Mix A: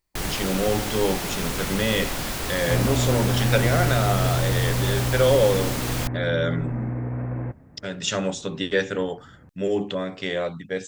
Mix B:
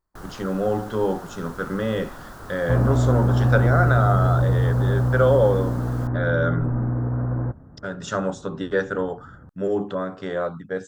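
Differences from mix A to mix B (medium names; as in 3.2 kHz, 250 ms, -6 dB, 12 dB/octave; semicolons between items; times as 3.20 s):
first sound -10.5 dB; second sound: add tilt EQ -1.5 dB/octave; master: add resonant high shelf 1.8 kHz -8.5 dB, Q 3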